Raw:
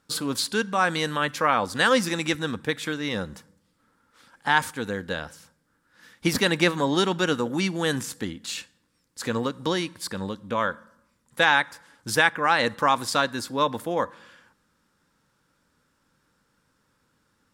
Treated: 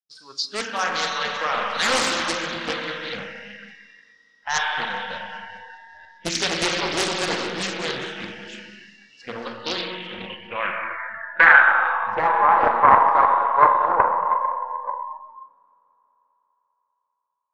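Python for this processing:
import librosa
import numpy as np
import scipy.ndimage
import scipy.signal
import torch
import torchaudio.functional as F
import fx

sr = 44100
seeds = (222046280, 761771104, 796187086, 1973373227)

y = fx.reverse_delay(x, sr, ms=466, wet_db=-7.5)
y = fx.power_curve(y, sr, exponent=1.4)
y = fx.high_shelf(y, sr, hz=6000.0, db=7.5, at=(0.56, 2.18))
y = fx.dereverb_blind(y, sr, rt60_s=1.2)
y = fx.low_shelf(y, sr, hz=250.0, db=-5.0)
y = fx.rev_schroeder(y, sr, rt60_s=3.0, comb_ms=30, drr_db=0.0)
y = fx.fold_sine(y, sr, drive_db=9, ceiling_db=-4.5)
y = fx.echo_thinned(y, sr, ms=199, feedback_pct=77, hz=170.0, wet_db=-14.5)
y = fx.noise_reduce_blind(y, sr, reduce_db=20)
y = fx.filter_sweep_lowpass(y, sr, from_hz=5300.0, to_hz=990.0, start_s=9.28, end_s=12.31, q=6.6)
y = fx.doppler_dist(y, sr, depth_ms=0.74)
y = y * librosa.db_to_amplitude(-10.5)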